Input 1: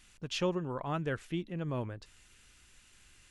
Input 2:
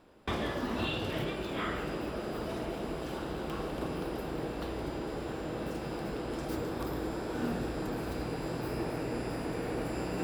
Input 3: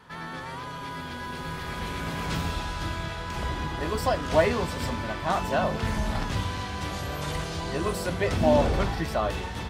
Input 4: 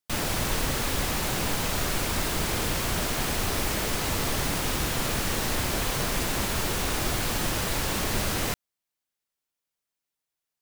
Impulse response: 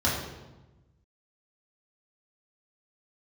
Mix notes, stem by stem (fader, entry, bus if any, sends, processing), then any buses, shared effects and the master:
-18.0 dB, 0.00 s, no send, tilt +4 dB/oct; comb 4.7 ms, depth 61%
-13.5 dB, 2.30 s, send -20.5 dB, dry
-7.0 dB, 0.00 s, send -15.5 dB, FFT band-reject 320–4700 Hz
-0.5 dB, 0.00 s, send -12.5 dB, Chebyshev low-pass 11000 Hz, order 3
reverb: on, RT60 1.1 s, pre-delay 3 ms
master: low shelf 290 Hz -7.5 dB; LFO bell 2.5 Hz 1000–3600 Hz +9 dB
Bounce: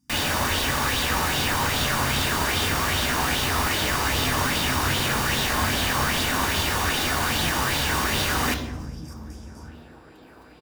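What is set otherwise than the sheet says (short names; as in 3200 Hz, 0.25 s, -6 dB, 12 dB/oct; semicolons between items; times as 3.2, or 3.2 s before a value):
stem 1: muted; stem 4: missing Chebyshev low-pass 11000 Hz, order 3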